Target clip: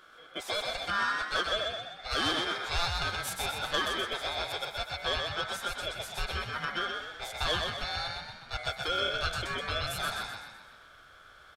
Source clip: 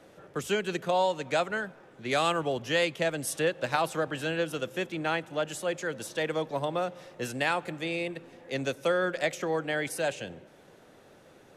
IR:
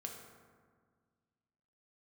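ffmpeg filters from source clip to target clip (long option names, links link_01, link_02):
-filter_complex "[0:a]afftfilt=real='real(if(lt(b,1008),b+24*(1-2*mod(floor(b/24),2)),b),0)':imag='imag(if(lt(b,1008),b+24*(1-2*mod(floor(b/24),2)),b),0)':win_size=2048:overlap=0.75,bandreject=frequency=50:width_type=h:width=6,bandreject=frequency=100:width_type=h:width=6,bandreject=frequency=150:width_type=h:width=6,bandreject=frequency=200:width_type=h:width=6,bandreject=frequency=250:width_type=h:width=6,bandreject=frequency=300:width_type=h:width=6,bandreject=frequency=350:width_type=h:width=6,bandreject=frequency=400:width_type=h:width=6,aeval=exprs='val(0)+0.002*(sin(2*PI*60*n/s)+sin(2*PI*2*60*n/s)/2+sin(2*PI*3*60*n/s)/3+sin(2*PI*4*60*n/s)/4+sin(2*PI*5*60*n/s)/5)':channel_layout=same,equalizer=frequency=250:width_type=o:width=1:gain=5,equalizer=frequency=1000:width_type=o:width=1:gain=-11,equalizer=frequency=2000:width_type=o:width=1:gain=11,aeval=exprs='val(0)*sin(2*PI*1400*n/s)':channel_layout=same,asubboost=boost=6:cutoff=75,asoftclip=type=tanh:threshold=-19dB,asplit=7[link_01][link_02][link_03][link_04][link_05][link_06][link_07];[link_02]adelay=126,afreqshift=43,volume=-4dB[link_08];[link_03]adelay=252,afreqshift=86,volume=-10.2dB[link_09];[link_04]adelay=378,afreqshift=129,volume=-16.4dB[link_10];[link_05]adelay=504,afreqshift=172,volume=-22.6dB[link_11];[link_06]adelay=630,afreqshift=215,volume=-28.8dB[link_12];[link_07]adelay=756,afreqshift=258,volume=-35dB[link_13];[link_01][link_08][link_09][link_10][link_11][link_12][link_13]amix=inputs=7:normalize=0,volume=-1.5dB"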